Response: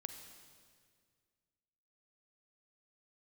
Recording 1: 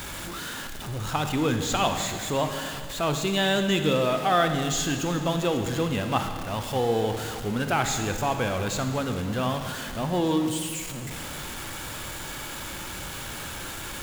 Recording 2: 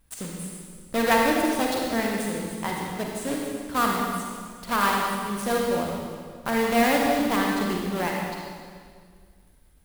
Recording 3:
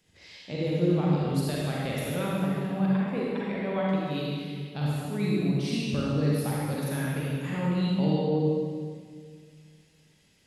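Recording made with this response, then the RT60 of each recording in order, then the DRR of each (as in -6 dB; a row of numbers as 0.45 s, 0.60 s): 1; 2.0 s, 1.9 s, 1.9 s; 6.5 dB, -1.5 dB, -5.5 dB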